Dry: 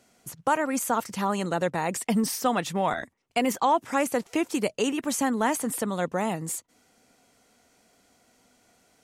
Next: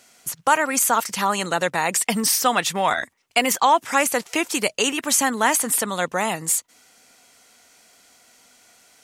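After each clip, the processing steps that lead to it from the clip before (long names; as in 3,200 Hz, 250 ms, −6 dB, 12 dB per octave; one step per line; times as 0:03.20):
tilt shelving filter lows −7 dB, about 760 Hz
level +5 dB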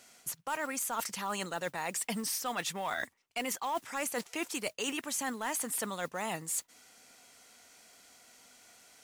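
noise that follows the level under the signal 23 dB
soft clipping −8 dBFS, distortion −21 dB
reversed playback
downward compressor, threshold −28 dBFS, peak gain reduction 13 dB
reversed playback
level −4.5 dB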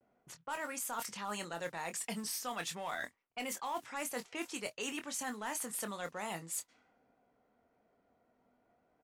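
low-pass that shuts in the quiet parts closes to 590 Hz, open at −31.5 dBFS
pitch vibrato 0.34 Hz 30 cents
double-tracking delay 24 ms −8.5 dB
level −5 dB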